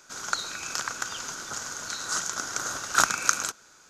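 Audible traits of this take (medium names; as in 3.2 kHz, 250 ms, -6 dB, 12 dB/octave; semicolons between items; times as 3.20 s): noise floor -56 dBFS; spectral tilt -1.5 dB/octave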